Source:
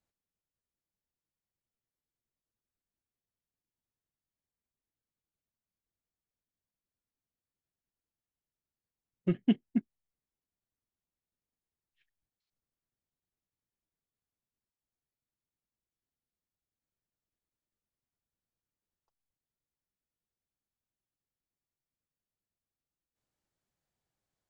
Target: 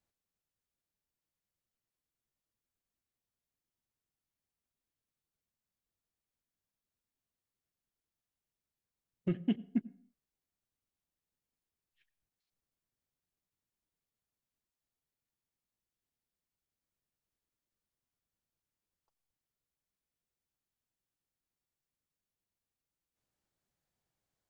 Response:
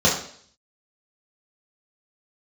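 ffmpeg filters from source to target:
-filter_complex "[0:a]alimiter=limit=-21.5dB:level=0:latency=1:release=58,asplit=2[a][b];[1:a]atrim=start_sample=2205,afade=t=out:st=0.31:d=0.01,atrim=end_sample=14112,adelay=85[c];[b][c]afir=irnorm=-1:irlink=0,volume=-41dB[d];[a][d]amix=inputs=2:normalize=0"

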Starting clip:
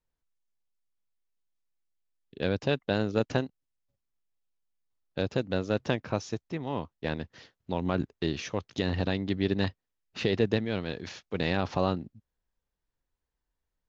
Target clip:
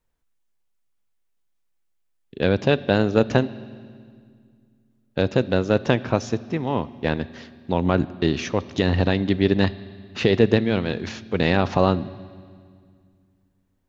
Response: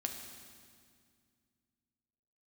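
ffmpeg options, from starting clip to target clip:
-filter_complex "[0:a]asplit=2[a][b];[b]lowpass=f=5.1k:w=0.5412,lowpass=f=5.1k:w=1.3066[c];[1:a]atrim=start_sample=2205[d];[c][d]afir=irnorm=-1:irlink=0,volume=-10.5dB[e];[a][e]amix=inputs=2:normalize=0,volume=7dB"

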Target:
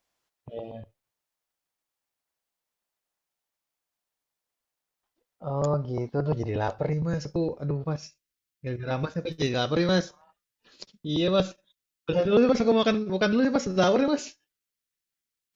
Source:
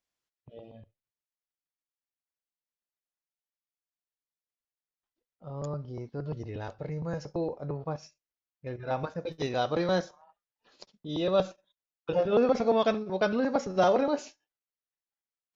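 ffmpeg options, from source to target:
-af "asetnsamples=n=441:p=0,asendcmd='6.93 equalizer g -10.5',equalizer=f=780:w=0.99:g=5,volume=8dB"

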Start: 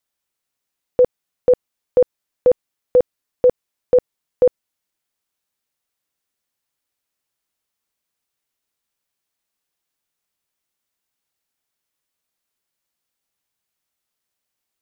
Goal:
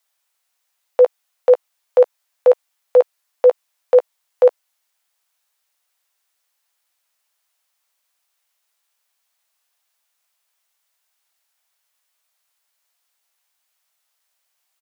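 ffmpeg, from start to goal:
-filter_complex "[0:a]highpass=f=600:w=0.5412,highpass=f=600:w=1.3066,asplit=2[a][b];[b]adelay=14,volume=-12dB[c];[a][c]amix=inputs=2:normalize=0,volume=8dB"

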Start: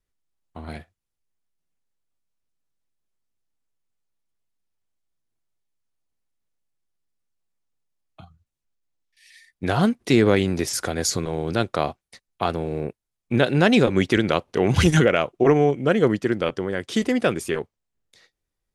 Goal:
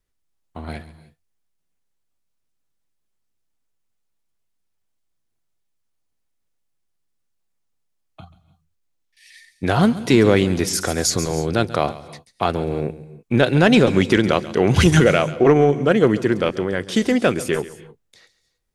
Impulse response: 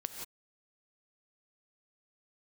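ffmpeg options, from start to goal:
-filter_complex "[0:a]acontrast=22,asplit=2[a][b];[b]bass=f=250:g=6,treble=f=4k:g=9[c];[1:a]atrim=start_sample=2205,adelay=137[d];[c][d]afir=irnorm=-1:irlink=0,volume=-16.5dB[e];[a][e]amix=inputs=2:normalize=0,volume=-1dB"

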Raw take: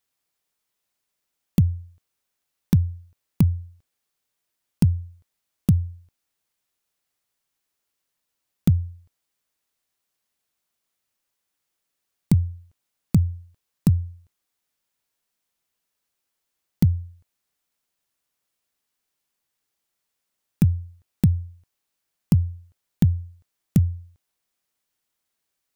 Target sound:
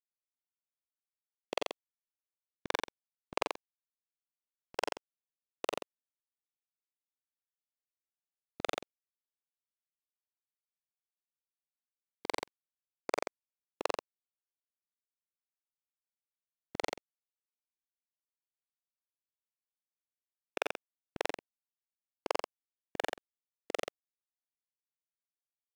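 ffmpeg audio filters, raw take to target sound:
-filter_complex "[0:a]afftfilt=real='re':imag='-im':win_size=4096:overlap=0.75,afftfilt=real='re*lt(hypot(re,im),0.0562)':imag='im*lt(hypot(re,im),0.0562)':win_size=1024:overlap=0.75,highpass=290,lowpass=3.2k,asplit=2[a][b];[b]aecho=0:1:86:0.631[c];[a][c]amix=inputs=2:normalize=0,aeval=exprs='sgn(val(0))*max(abs(val(0))-0.00211,0)':c=same,volume=16.5dB"

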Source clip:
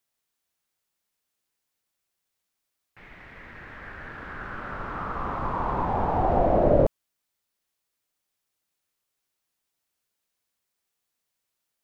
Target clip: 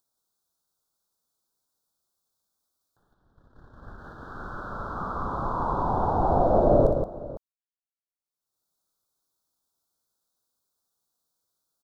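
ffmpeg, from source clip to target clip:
-filter_complex "[0:a]agate=range=-56dB:threshold=-39dB:ratio=16:detection=peak,asettb=1/sr,asplit=3[a][b][c];[a]atrim=end=3.214[d];[b]atrim=start=3.21:end=3.96,asetpts=PTS-STARTPTS,afade=t=in:d=0.004:c=qsin,afade=t=out:st=0.746:d=0.004:c=qsin,lowshelf=f=360:g=9[e];[c]atrim=start=3.956[f];[d][e]acrossfade=d=0.004:c1=hsin:c2=qsin[g];[g][f]acrossfade=d=0.004:c1=qsin:c2=hsin,acompressor=mode=upward:threshold=-38dB:ratio=2.5,asuperstop=centerf=2300:order=8:qfactor=1.1,aecho=1:1:60|173|505:0.447|0.501|0.141,volume=-1dB"

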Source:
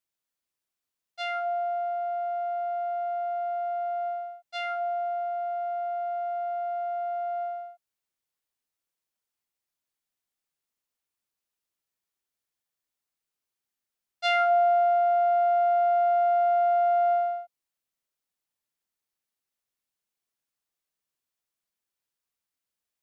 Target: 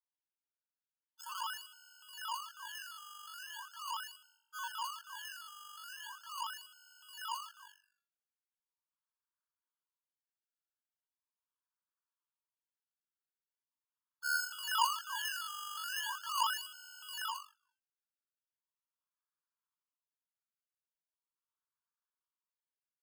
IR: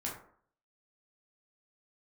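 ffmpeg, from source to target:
-filter_complex "[0:a]equalizer=f=600:w=3.1:g=-10,lowpass=f=3.1k:t=q:w=0.5098,lowpass=f=3.1k:t=q:w=0.6013,lowpass=f=3.1k:t=q:w=0.9,lowpass=f=3.1k:t=q:w=2.563,afreqshift=-3600,asplit=5[a][b][c][d][e];[b]adelay=85,afreqshift=-48,volume=-12.5dB[f];[c]adelay=170,afreqshift=-96,volume=-20.7dB[g];[d]adelay=255,afreqshift=-144,volume=-28.9dB[h];[e]adelay=340,afreqshift=-192,volume=-37dB[i];[a][f][g][h][i]amix=inputs=5:normalize=0,acrusher=samples=29:mix=1:aa=0.000001:lfo=1:lforange=29:lforate=0.4,afftfilt=real='re*eq(mod(floor(b*sr/1024/880),2),1)':imag='im*eq(mod(floor(b*sr/1024/880),2),1)':win_size=1024:overlap=0.75,volume=-2dB"

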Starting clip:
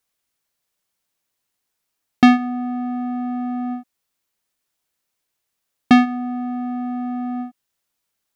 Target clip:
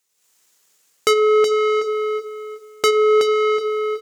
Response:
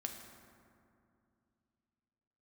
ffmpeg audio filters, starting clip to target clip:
-filter_complex "[0:a]asplit=2[a][b];[b]acompressor=threshold=-22dB:ratio=6,volume=-1.5dB[c];[a][c]amix=inputs=2:normalize=0,equalizer=f=100:t=o:w=0.67:g=7,equalizer=f=250:t=o:w=0.67:g=9,equalizer=f=4k:t=o:w=0.67:g=8,asoftclip=type=tanh:threshold=-4dB,alimiter=limit=-14.5dB:level=0:latency=1:release=303,lowshelf=f=330:g=-12,atempo=1.2,bandreject=f=60:t=h:w=6,bandreject=f=120:t=h:w=6,bandreject=f=180:t=h:w=6,bandreject=f=240:t=h:w=6,bandreject=f=300:t=h:w=6,bandreject=f=360:t=h:w=6,bandreject=f=420:t=h:w=6,asplit=2[d][e];[e]adelay=646,lowpass=f=2.9k:p=1,volume=-6dB,asplit=2[f][g];[g]adelay=646,lowpass=f=2.9k:p=1,volume=0.32,asplit=2[h][i];[i]adelay=646,lowpass=f=2.9k:p=1,volume=0.32,asplit=2[j][k];[k]adelay=646,lowpass=f=2.9k:p=1,volume=0.32[l];[f][h][j][l]amix=inputs=4:normalize=0[m];[d][m]amix=inputs=2:normalize=0,dynaudnorm=f=140:g=5:m=12dB,highpass=49,asetrate=76440,aresample=44100"

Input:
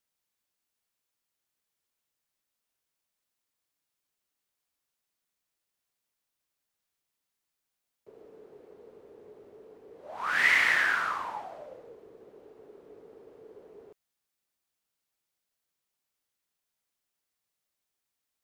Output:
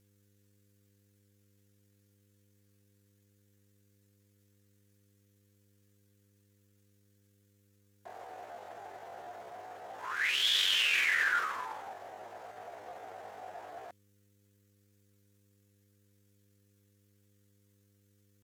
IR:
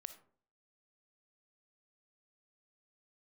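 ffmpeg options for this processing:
-af "equalizer=f=250:t=o:w=1:g=10,equalizer=f=1k:t=o:w=1:g=11,equalizer=f=2k:t=o:w=1:g=5,equalizer=f=4k:t=o:w=1:g=9,equalizer=f=8k:t=o:w=1:g=11,areverse,acompressor=threshold=-25dB:ratio=12,areverse,aeval=exprs='val(0)+0.000398*(sin(2*PI*60*n/s)+sin(2*PI*2*60*n/s)/2+sin(2*PI*3*60*n/s)/3+sin(2*PI*4*60*n/s)/4+sin(2*PI*5*60*n/s)/5)':c=same,asetrate=74167,aresample=44100,atempo=0.594604"

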